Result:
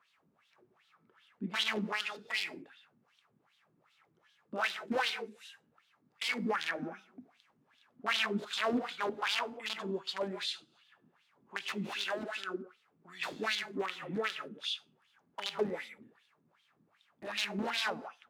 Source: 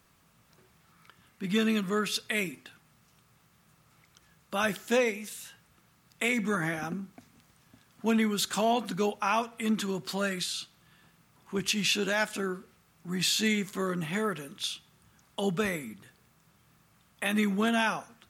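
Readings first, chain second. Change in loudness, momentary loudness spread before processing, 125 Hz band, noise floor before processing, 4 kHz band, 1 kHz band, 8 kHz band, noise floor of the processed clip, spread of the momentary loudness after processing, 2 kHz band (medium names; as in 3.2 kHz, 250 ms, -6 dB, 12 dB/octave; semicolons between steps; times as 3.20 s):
-6.0 dB, 13 LU, -11.5 dB, -65 dBFS, -3.0 dB, -5.0 dB, -13.0 dB, -74 dBFS, 12 LU, -4.0 dB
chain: integer overflow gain 20.5 dB; gated-style reverb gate 200 ms flat, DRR 7.5 dB; wah-wah 2.6 Hz 250–3600 Hz, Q 3.5; trim +4 dB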